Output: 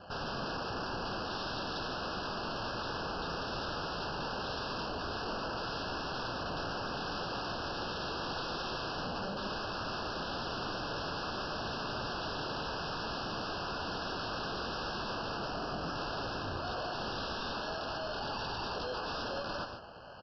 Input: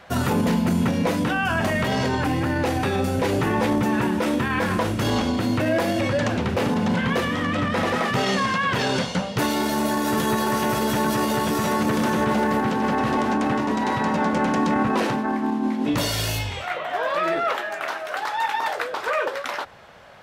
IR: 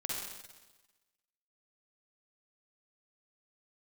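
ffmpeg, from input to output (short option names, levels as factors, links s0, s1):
-af "acrusher=samples=12:mix=1:aa=0.000001,acontrast=22,aresample=11025,aeval=exprs='0.0562*(abs(mod(val(0)/0.0562+3,4)-2)-1)':c=same,aresample=44100,asuperstop=centerf=2100:order=12:qfactor=2.3,aecho=1:1:107.9|142.9:0.316|0.355,volume=0.398"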